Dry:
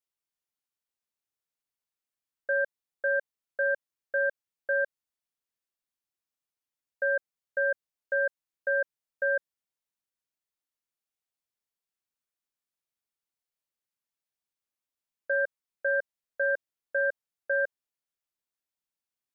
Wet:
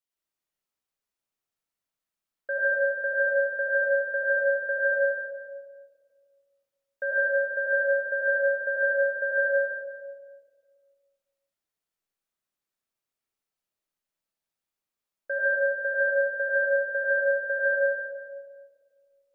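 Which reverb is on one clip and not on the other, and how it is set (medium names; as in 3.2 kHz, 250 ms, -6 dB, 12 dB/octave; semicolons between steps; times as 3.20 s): algorithmic reverb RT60 1.8 s, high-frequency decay 0.3×, pre-delay 50 ms, DRR -5.5 dB; trim -2.5 dB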